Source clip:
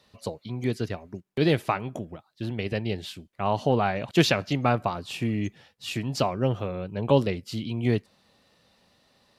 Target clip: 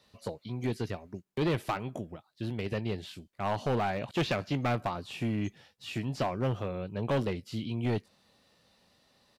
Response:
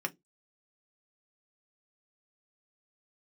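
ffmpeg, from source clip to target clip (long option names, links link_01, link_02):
-filter_complex "[0:a]acrossover=split=3000[link_01][link_02];[link_02]acompressor=threshold=-45dB:ratio=4:attack=1:release=60[link_03];[link_01][link_03]amix=inputs=2:normalize=0,acrossover=split=3500[link_04][link_05];[link_04]asoftclip=type=hard:threshold=-21dB[link_06];[link_05]asplit=2[link_07][link_08];[link_08]adelay=19,volume=-2dB[link_09];[link_07][link_09]amix=inputs=2:normalize=0[link_10];[link_06][link_10]amix=inputs=2:normalize=0,volume=-3.5dB"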